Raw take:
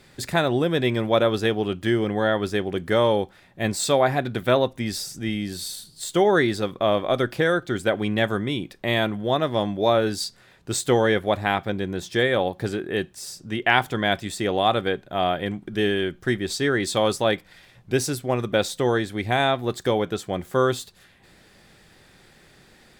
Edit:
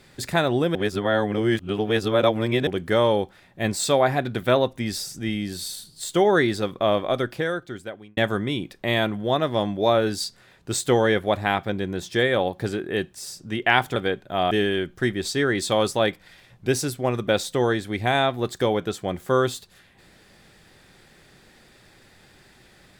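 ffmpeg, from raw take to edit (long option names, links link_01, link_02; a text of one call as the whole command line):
ffmpeg -i in.wav -filter_complex "[0:a]asplit=6[link_01][link_02][link_03][link_04][link_05][link_06];[link_01]atrim=end=0.752[link_07];[link_02]atrim=start=0.748:end=2.672,asetpts=PTS-STARTPTS,areverse[link_08];[link_03]atrim=start=2.668:end=8.17,asetpts=PTS-STARTPTS,afade=type=out:start_time=4.272:duration=1.23[link_09];[link_04]atrim=start=8.17:end=13.962,asetpts=PTS-STARTPTS,afade=type=in:duration=0.004:curve=hsin[link_10];[link_05]atrim=start=14.768:end=15.322[link_11];[link_06]atrim=start=15.758[link_12];[link_07][link_08]acrossfade=duration=0.004:curve1=hsin:curve2=hsin[link_13];[link_09][link_10]concat=n=2:v=0:a=1[link_14];[link_13][link_14]acrossfade=duration=0.004:curve1=hsin:curve2=hsin[link_15];[link_15][link_11]acrossfade=duration=0.004:curve1=hsin:curve2=hsin[link_16];[link_16][link_12]acrossfade=duration=0.004:curve1=hsin:curve2=hsin" out.wav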